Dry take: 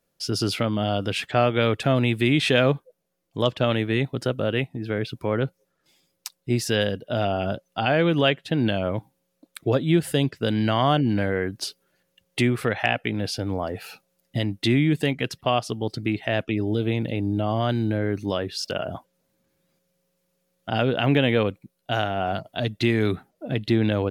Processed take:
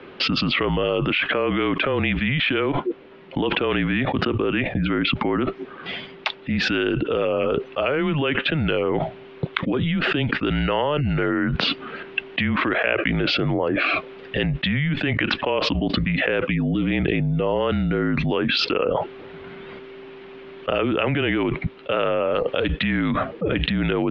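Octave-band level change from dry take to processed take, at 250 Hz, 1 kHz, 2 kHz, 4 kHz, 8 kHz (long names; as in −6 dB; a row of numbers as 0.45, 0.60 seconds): +1.5 dB, +1.0 dB, +5.5 dB, +3.5 dB, below −10 dB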